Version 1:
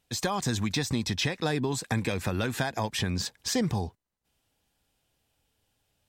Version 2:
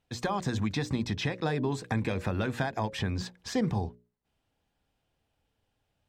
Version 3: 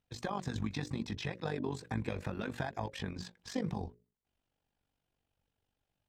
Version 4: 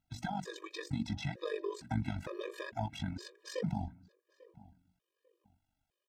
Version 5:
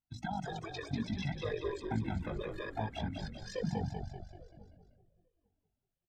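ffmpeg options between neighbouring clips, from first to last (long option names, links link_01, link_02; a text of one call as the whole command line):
ffmpeg -i in.wav -af "lowpass=frequency=1900:poles=1,bandreject=frequency=60:width_type=h:width=6,bandreject=frequency=120:width_type=h:width=6,bandreject=frequency=180:width_type=h:width=6,bandreject=frequency=240:width_type=h:width=6,bandreject=frequency=300:width_type=h:width=6,bandreject=frequency=360:width_type=h:width=6,bandreject=frequency=420:width_type=h:width=6,bandreject=frequency=480:width_type=h:width=6,bandreject=frequency=540:width_type=h:width=6,bandreject=frequency=600:width_type=h:width=6" out.wav
ffmpeg -i in.wav -af "flanger=delay=0.5:depth=8.7:regen=-54:speed=0.73:shape=triangular,tremolo=f=48:d=0.75" out.wav
ffmpeg -i in.wav -filter_complex "[0:a]asplit=2[link_01][link_02];[link_02]adelay=845,lowpass=frequency=1500:poles=1,volume=-20dB,asplit=2[link_03][link_04];[link_04]adelay=845,lowpass=frequency=1500:poles=1,volume=0.26[link_05];[link_01][link_03][link_05]amix=inputs=3:normalize=0,afftfilt=real='re*gt(sin(2*PI*1.1*pts/sr)*(1-2*mod(floor(b*sr/1024/320),2)),0)':imag='im*gt(sin(2*PI*1.1*pts/sr)*(1-2*mod(floor(b*sr/1024/320),2)),0)':win_size=1024:overlap=0.75,volume=2.5dB" out.wav
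ffmpeg -i in.wav -filter_complex "[0:a]bandreject=frequency=60:width_type=h:width=6,bandreject=frequency=120:width_type=h:width=6,bandreject=frequency=180:width_type=h:width=6,afftdn=noise_reduction=13:noise_floor=-49,asplit=8[link_01][link_02][link_03][link_04][link_05][link_06][link_07][link_08];[link_02]adelay=193,afreqshift=-37,volume=-5dB[link_09];[link_03]adelay=386,afreqshift=-74,volume=-10.5dB[link_10];[link_04]adelay=579,afreqshift=-111,volume=-16dB[link_11];[link_05]adelay=772,afreqshift=-148,volume=-21.5dB[link_12];[link_06]adelay=965,afreqshift=-185,volume=-27.1dB[link_13];[link_07]adelay=1158,afreqshift=-222,volume=-32.6dB[link_14];[link_08]adelay=1351,afreqshift=-259,volume=-38.1dB[link_15];[link_01][link_09][link_10][link_11][link_12][link_13][link_14][link_15]amix=inputs=8:normalize=0" out.wav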